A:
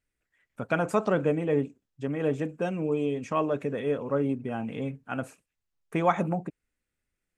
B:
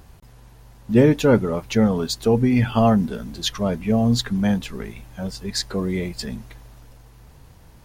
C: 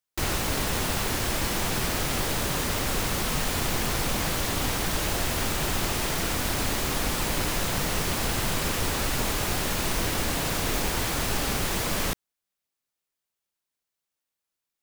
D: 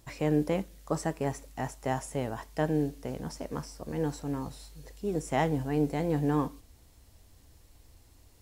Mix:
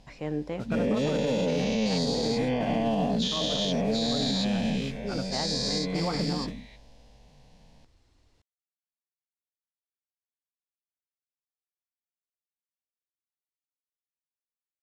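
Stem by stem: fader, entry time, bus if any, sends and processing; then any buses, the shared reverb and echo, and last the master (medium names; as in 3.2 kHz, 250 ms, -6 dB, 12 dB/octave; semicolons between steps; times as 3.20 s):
-6.5 dB, 0.00 s, no send, bass shelf 250 Hz +10 dB; modulation noise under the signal 14 dB
-8.0 dB, 0.00 s, no send, every event in the spectrogram widened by 480 ms; static phaser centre 350 Hz, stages 6
mute
-4.0 dB, 0.00 s, no send, none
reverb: none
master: Chebyshev low-pass 4.5 kHz, order 2; peaking EQ 75 Hz -3.5 dB 1.2 oct; peak limiter -18.5 dBFS, peak gain reduction 9 dB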